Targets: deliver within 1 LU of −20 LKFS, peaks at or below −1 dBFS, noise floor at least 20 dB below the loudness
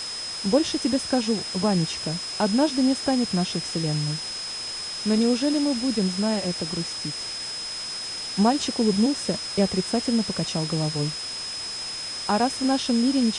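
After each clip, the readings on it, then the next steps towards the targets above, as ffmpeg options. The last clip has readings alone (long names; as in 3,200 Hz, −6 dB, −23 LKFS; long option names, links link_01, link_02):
interfering tone 5,100 Hz; level of the tone −31 dBFS; background noise floor −33 dBFS; target noise floor −45 dBFS; integrated loudness −24.5 LKFS; sample peak −8.0 dBFS; target loudness −20.0 LKFS
→ -af "bandreject=frequency=5100:width=30"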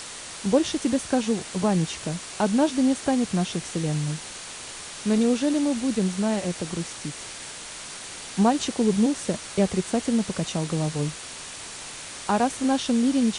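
interfering tone none found; background noise floor −39 dBFS; target noise floor −46 dBFS
→ -af "afftdn=noise_reduction=7:noise_floor=-39"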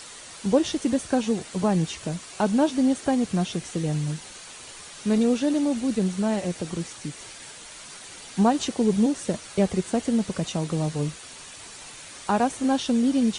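background noise floor −43 dBFS; target noise floor −45 dBFS
→ -af "afftdn=noise_reduction=6:noise_floor=-43"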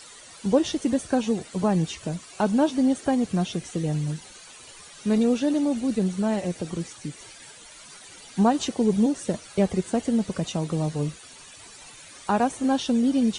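background noise floor −47 dBFS; integrated loudness −25.0 LKFS; sample peak −8.5 dBFS; target loudness −20.0 LKFS
→ -af "volume=5dB"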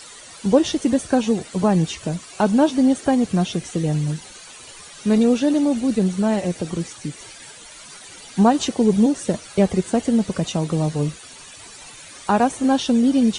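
integrated loudness −20.0 LKFS; sample peak −3.5 dBFS; background noise floor −42 dBFS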